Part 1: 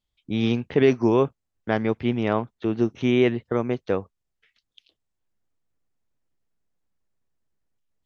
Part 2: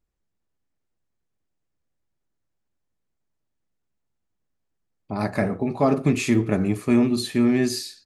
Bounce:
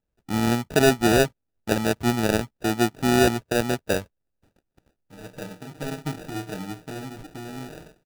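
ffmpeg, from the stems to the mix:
-filter_complex "[0:a]volume=1.06,asplit=2[s0][s1];[1:a]aecho=1:1:6.5:0.92,volume=0.2[s2];[s1]apad=whole_len=355364[s3];[s2][s3]sidechaincompress=threshold=0.02:ratio=8:attack=11:release=1300[s4];[s0][s4]amix=inputs=2:normalize=0,acrusher=samples=41:mix=1:aa=0.000001"

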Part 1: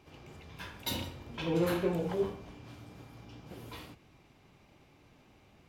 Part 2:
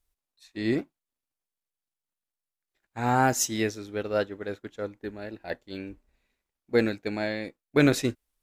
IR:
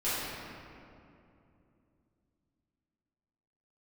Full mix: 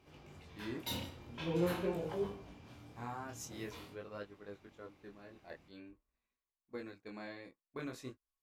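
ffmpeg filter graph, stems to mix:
-filter_complex "[0:a]volume=0.794[s0];[1:a]equalizer=f=1100:t=o:w=0.24:g=13.5,alimiter=limit=0.168:level=0:latency=1:release=385,volume=0.2[s1];[s0][s1]amix=inputs=2:normalize=0,flanger=delay=19.5:depth=6.5:speed=0.46"

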